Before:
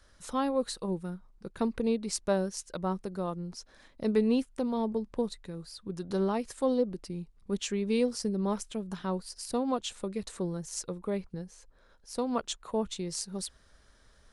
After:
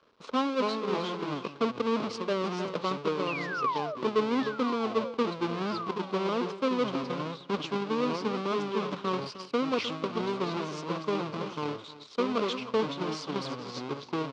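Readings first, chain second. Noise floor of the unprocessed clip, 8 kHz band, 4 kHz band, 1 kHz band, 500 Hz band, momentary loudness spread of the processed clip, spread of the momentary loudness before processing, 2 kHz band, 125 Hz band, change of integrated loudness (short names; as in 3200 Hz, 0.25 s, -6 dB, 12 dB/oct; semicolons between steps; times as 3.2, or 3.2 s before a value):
-62 dBFS, -11.0 dB, +4.5 dB, +7.0 dB, +2.5 dB, 6 LU, 13 LU, +9.5 dB, 0.0 dB, +1.5 dB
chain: half-waves squared off; painted sound fall, 3.27–3.95, 570–2900 Hz -32 dBFS; echoes that change speed 0.175 s, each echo -4 st, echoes 2, each echo -6 dB; on a send: echo 0.309 s -14.5 dB; on the sum: transient shaper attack +10 dB, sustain +6 dB; sample leveller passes 1; reverse; compressor 6:1, threshold -24 dBFS, peak gain reduction 13 dB; reverse; speaker cabinet 240–4600 Hz, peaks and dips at 260 Hz +4 dB, 440 Hz +6 dB, 750 Hz -4 dB, 1100 Hz +8 dB, 1800 Hz -8 dB; gain -3.5 dB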